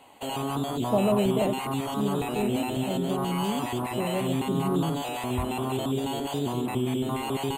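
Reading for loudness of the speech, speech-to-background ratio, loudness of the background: -30.5 LUFS, -0.5 dB, -30.0 LUFS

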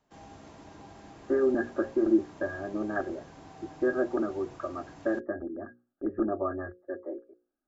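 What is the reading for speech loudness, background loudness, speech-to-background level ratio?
-31.0 LUFS, -50.0 LUFS, 19.0 dB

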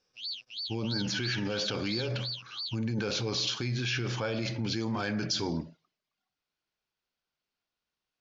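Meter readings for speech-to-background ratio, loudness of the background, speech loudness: 5.0 dB, -37.0 LUFS, -32.0 LUFS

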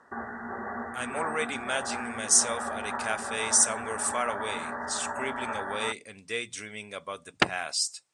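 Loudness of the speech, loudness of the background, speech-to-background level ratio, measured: -29.0 LUFS, -35.0 LUFS, 6.0 dB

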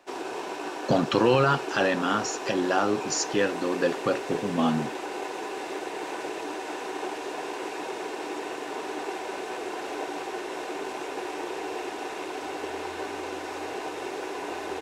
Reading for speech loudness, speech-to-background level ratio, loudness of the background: -26.0 LUFS, 8.0 dB, -34.0 LUFS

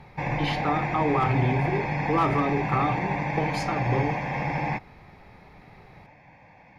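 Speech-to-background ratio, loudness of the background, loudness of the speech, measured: 0.5 dB, -28.5 LUFS, -28.0 LUFS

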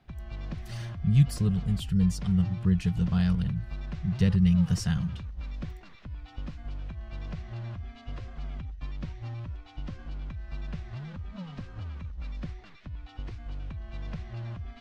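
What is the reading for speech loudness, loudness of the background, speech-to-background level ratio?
-26.5 LUFS, -40.0 LUFS, 13.5 dB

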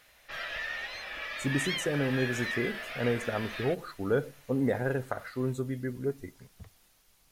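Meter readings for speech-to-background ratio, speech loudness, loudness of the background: 3.0 dB, -32.5 LUFS, -35.5 LUFS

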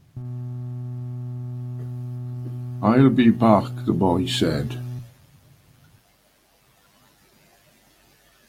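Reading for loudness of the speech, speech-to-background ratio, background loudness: -19.5 LUFS, 13.0 dB, -32.5 LUFS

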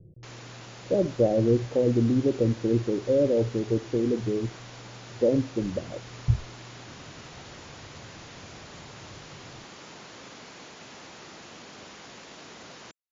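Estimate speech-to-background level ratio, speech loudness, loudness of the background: 18.5 dB, -26.0 LUFS, -44.5 LUFS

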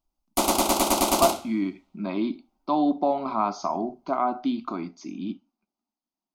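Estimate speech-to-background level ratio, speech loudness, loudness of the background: -5.0 dB, -28.0 LUFS, -23.0 LUFS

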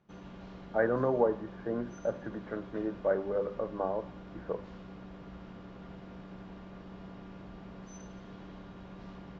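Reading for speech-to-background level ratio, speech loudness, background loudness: 14.5 dB, -33.5 LUFS, -48.0 LUFS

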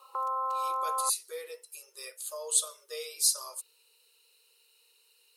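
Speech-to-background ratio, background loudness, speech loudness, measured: 1.0 dB, -32.0 LUFS, -31.0 LUFS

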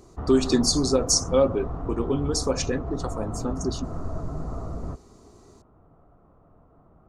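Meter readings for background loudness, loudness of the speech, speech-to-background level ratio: -34.0 LUFS, -24.5 LUFS, 9.5 dB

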